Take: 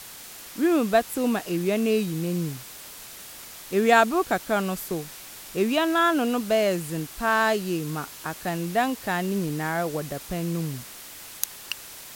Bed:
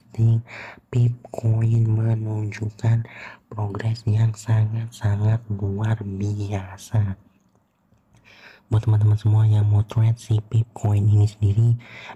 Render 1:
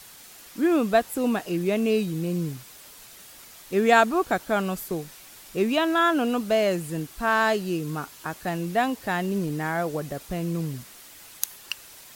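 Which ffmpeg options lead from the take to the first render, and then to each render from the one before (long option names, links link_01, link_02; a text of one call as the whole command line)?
ffmpeg -i in.wav -af "afftdn=noise_reduction=6:noise_floor=-43" out.wav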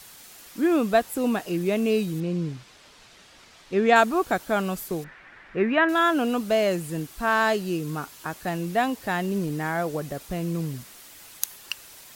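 ffmpeg -i in.wav -filter_complex "[0:a]asettb=1/sr,asplit=3[link_01][link_02][link_03];[link_01]atrim=end=2.204[link_04];[link_02]atrim=start=2.2:end=3.96,asetpts=PTS-STARTPTS,afade=type=in:duration=0.004:curve=qsin,afade=type=out:start_time=1.756:duration=0.004:curve=qsin,lowpass=4800[link_05];[link_03]atrim=start=3.956[link_06];[link_04][link_05]acrossfade=duration=0.004:curve1=hsin:curve2=qsin[link_07];[link_07][link_06]acrossfade=duration=0.004:curve1=qsin:curve2=hsin,asettb=1/sr,asplit=3[link_08][link_09][link_10];[link_08]atrim=end=5.044[link_11];[link_09]atrim=start=5.04:end=5.89,asetpts=PTS-STARTPTS,afade=type=in:duration=0.004:curve=qsin,afade=type=out:start_time=0.846:duration=0.004:curve=qsin,lowpass=frequency=1800:width_type=q:width=3.7[link_12];[link_10]atrim=start=5.886[link_13];[link_11][link_12]acrossfade=duration=0.004:curve1=hsin:curve2=qsin[link_14];[link_14][link_13]acrossfade=duration=0.004:curve1=qsin:curve2=hsin" out.wav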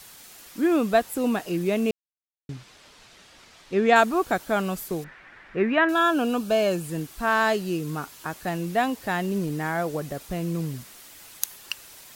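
ffmpeg -i in.wav -filter_complex "[0:a]asettb=1/sr,asplit=3[link_01][link_02][link_03];[link_01]atrim=end=5.914[link_04];[link_02]atrim=start=5.91:end=6.85,asetpts=PTS-STARTPTS,afade=type=in:duration=0.004:curve=qsin,afade=type=out:start_time=0.936:duration=0.004:curve=qsin,asuperstop=centerf=2000:order=8:qfactor=6.4[link_05];[link_03]atrim=start=6.846[link_06];[link_04][link_05]acrossfade=duration=0.004:curve1=hsin:curve2=qsin[link_07];[link_07][link_06]acrossfade=duration=0.004:curve1=qsin:curve2=hsin,asplit=3[link_08][link_09][link_10];[link_08]atrim=end=1.91,asetpts=PTS-STARTPTS,afade=type=out:start_time=1.906:duration=0.004:curve=hsin[link_11];[link_09]atrim=start=1.91:end=2.49,asetpts=PTS-STARTPTS,volume=0[link_12];[link_10]atrim=start=2.49,asetpts=PTS-STARTPTS,afade=type=in:duration=0.004:curve=hsin[link_13];[link_11][link_12][link_13]concat=n=3:v=0:a=1" out.wav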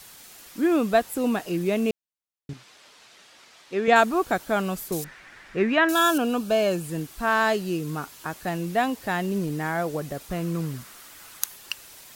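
ffmpeg -i in.wav -filter_complex "[0:a]asettb=1/sr,asplit=3[link_01][link_02][link_03];[link_01]atrim=end=2.534[link_04];[link_02]atrim=start=2.53:end=3.88,asetpts=PTS-STARTPTS,afade=type=in:duration=0.004:curve=qsin,afade=type=out:start_time=1.346:duration=0.004:curve=qsin,highpass=frequency=400:poles=1[link_05];[link_03]atrim=start=3.876[link_06];[link_04][link_05]acrossfade=duration=0.004:curve1=hsin:curve2=qsin[link_07];[link_07][link_06]acrossfade=duration=0.004:curve1=qsin:curve2=hsin,asettb=1/sr,asplit=3[link_08][link_09][link_10];[link_08]atrim=end=4.924[link_11];[link_09]atrim=start=4.92:end=6.18,asetpts=PTS-STARTPTS,afade=type=in:duration=0.004:curve=qsin,afade=type=out:start_time=1.256:duration=0.004:curve=qsin,bass=frequency=250:gain=1,treble=frequency=4000:gain=14[link_12];[link_10]atrim=start=6.176[link_13];[link_11][link_12]acrossfade=duration=0.004:curve1=hsin:curve2=qsin[link_14];[link_14][link_13]acrossfade=duration=0.004:curve1=qsin:curve2=hsin,asettb=1/sr,asplit=3[link_15][link_16][link_17];[link_15]atrim=end=10.304[link_18];[link_16]atrim=start=10.3:end=11.48,asetpts=PTS-STARTPTS,afade=type=in:duration=0.004:curve=qsin,afade=type=out:start_time=1.176:duration=0.004:curve=qsin,equalizer=frequency=1300:width_type=o:width=0.85:gain=6.5[link_19];[link_17]atrim=start=11.476[link_20];[link_18][link_19]acrossfade=duration=0.004:curve1=hsin:curve2=qsin[link_21];[link_21][link_20]acrossfade=duration=0.004:curve1=qsin:curve2=hsin" out.wav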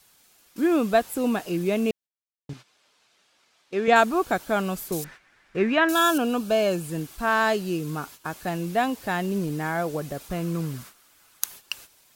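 ffmpeg -i in.wav -af "agate=range=-12dB:threshold=-43dB:ratio=16:detection=peak,bandreject=frequency=1900:width=19" out.wav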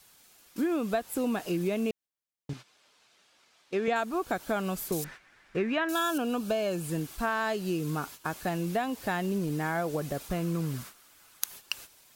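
ffmpeg -i in.wav -af "acompressor=threshold=-26dB:ratio=6" out.wav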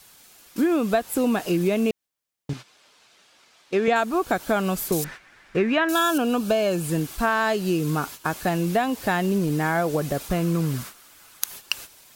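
ffmpeg -i in.wav -af "volume=7.5dB,alimiter=limit=-1dB:level=0:latency=1" out.wav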